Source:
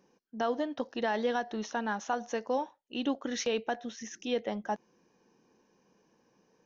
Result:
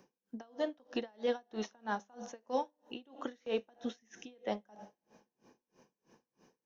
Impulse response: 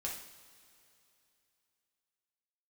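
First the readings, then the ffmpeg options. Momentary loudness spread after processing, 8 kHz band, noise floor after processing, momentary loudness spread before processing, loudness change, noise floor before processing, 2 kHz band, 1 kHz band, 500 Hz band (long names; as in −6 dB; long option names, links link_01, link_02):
14 LU, can't be measured, below −85 dBFS, 7 LU, −6.0 dB, −71 dBFS, −9.5 dB, −8.0 dB, −5.0 dB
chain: -filter_complex "[0:a]bandreject=frequency=99.59:width_type=h:width=4,bandreject=frequency=199.18:width_type=h:width=4,bandreject=frequency=298.77:width_type=h:width=4,bandreject=frequency=398.36:width_type=h:width=4,bandreject=frequency=497.95:width_type=h:width=4,bandreject=frequency=597.54:width_type=h:width=4,acrossover=split=390|1200|3100[link_01][link_02][link_03][link_04];[link_01]acompressor=threshold=-43dB:ratio=4[link_05];[link_02]acompressor=threshold=-36dB:ratio=4[link_06];[link_03]acompressor=threshold=-52dB:ratio=4[link_07];[link_04]acompressor=threshold=-54dB:ratio=4[link_08];[link_05][link_06][link_07][link_08]amix=inputs=4:normalize=0,asplit=2[link_09][link_10];[1:a]atrim=start_sample=2205,adelay=8[link_11];[link_10][link_11]afir=irnorm=-1:irlink=0,volume=-12.5dB[link_12];[link_09][link_12]amix=inputs=2:normalize=0,aeval=exprs='val(0)*pow(10,-33*(0.5-0.5*cos(2*PI*3.1*n/s))/20)':channel_layout=same,volume=5.5dB"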